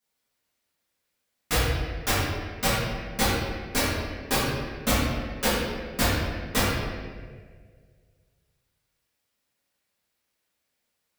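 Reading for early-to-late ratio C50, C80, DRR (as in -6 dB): -2.0 dB, 0.5 dB, -11.5 dB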